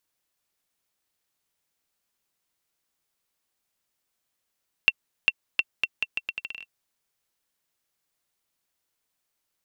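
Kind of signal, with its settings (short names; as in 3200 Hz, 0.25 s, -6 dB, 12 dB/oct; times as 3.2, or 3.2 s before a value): bouncing ball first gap 0.40 s, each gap 0.78, 2710 Hz, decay 41 ms -4.5 dBFS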